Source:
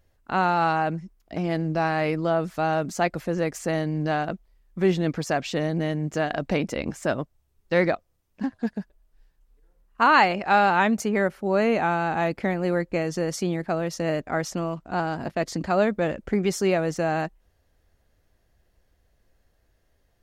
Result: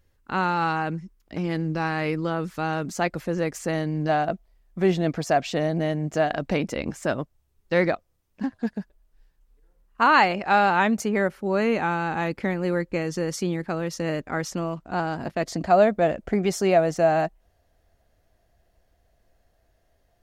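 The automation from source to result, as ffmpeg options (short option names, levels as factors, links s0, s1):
-af "asetnsamples=n=441:p=0,asendcmd='2.87 equalizer g -3;4.09 equalizer g 7.5;6.31 equalizer g -1;11.35 equalizer g -7.5;14.58 equalizer g -0.5;15.45 equalizer g 10',equalizer=f=680:t=o:w=0.3:g=-11.5"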